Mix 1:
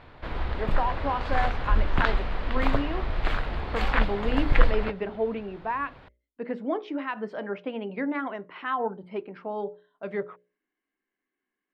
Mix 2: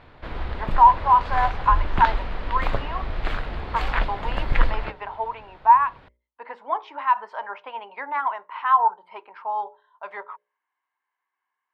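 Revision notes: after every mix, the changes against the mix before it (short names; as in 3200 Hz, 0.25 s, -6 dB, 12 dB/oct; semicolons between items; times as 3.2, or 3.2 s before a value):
speech: add resonant high-pass 940 Hz, resonance Q 8.5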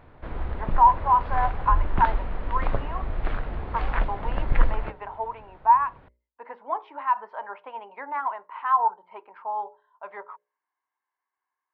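master: add tape spacing loss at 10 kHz 33 dB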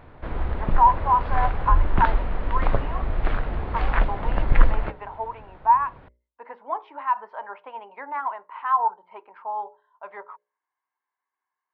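background +4.0 dB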